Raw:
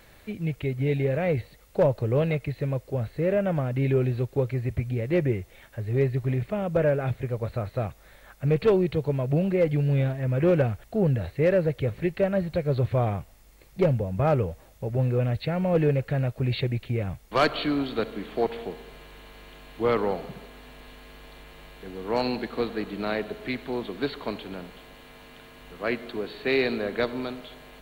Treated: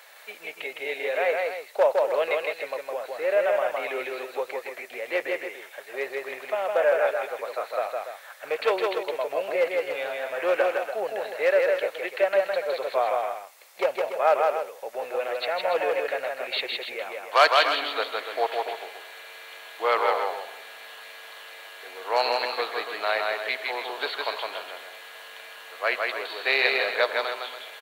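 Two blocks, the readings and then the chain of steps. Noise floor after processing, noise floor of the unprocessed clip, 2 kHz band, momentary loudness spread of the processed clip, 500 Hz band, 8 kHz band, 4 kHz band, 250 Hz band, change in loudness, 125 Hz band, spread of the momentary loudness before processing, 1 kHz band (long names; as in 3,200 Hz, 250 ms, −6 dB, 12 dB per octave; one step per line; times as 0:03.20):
−46 dBFS, −54 dBFS, +8.0 dB, 19 LU, +1.0 dB, can't be measured, +8.0 dB, −16.5 dB, +0.5 dB, below −40 dB, 11 LU, +7.5 dB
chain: high-pass filter 610 Hz 24 dB per octave
loudspeakers that aren't time-aligned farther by 55 metres −3 dB, 99 metres −10 dB
level +6 dB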